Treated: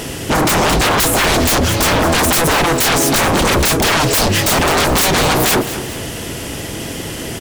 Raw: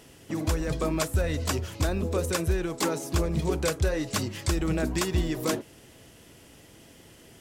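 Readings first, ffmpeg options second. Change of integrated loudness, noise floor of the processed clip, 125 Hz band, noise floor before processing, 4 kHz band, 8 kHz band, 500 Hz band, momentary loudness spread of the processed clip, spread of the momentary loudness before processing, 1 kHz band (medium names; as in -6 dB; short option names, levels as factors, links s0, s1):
+15.5 dB, -26 dBFS, +10.0 dB, -53 dBFS, +20.5 dB, +19.0 dB, +13.5 dB, 12 LU, 3 LU, +21.0 dB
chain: -af "aeval=exprs='0.168*sin(PI/2*7.94*val(0)/0.168)':c=same,aecho=1:1:214|428|642|856:0.237|0.0854|0.0307|0.0111,volume=1.78"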